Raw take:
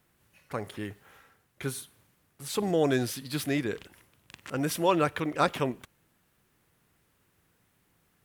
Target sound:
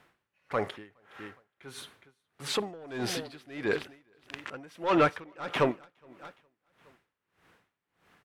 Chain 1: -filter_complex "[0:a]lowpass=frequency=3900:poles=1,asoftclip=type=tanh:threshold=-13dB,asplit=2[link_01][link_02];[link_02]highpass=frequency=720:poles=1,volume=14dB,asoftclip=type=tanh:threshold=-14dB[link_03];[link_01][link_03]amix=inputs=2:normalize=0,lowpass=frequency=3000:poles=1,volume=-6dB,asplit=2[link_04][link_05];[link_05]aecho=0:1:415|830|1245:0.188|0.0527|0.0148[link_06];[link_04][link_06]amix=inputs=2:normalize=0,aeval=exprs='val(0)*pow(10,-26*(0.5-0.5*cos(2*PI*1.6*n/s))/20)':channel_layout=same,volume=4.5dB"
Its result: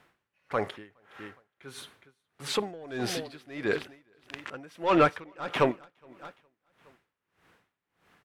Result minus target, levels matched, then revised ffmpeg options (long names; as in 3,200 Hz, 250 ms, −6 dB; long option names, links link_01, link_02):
soft clipping: distortion −12 dB
-filter_complex "[0:a]lowpass=frequency=3900:poles=1,asoftclip=type=tanh:threshold=-23dB,asplit=2[link_01][link_02];[link_02]highpass=frequency=720:poles=1,volume=14dB,asoftclip=type=tanh:threshold=-14dB[link_03];[link_01][link_03]amix=inputs=2:normalize=0,lowpass=frequency=3000:poles=1,volume=-6dB,asplit=2[link_04][link_05];[link_05]aecho=0:1:415|830|1245:0.188|0.0527|0.0148[link_06];[link_04][link_06]amix=inputs=2:normalize=0,aeval=exprs='val(0)*pow(10,-26*(0.5-0.5*cos(2*PI*1.6*n/s))/20)':channel_layout=same,volume=4.5dB"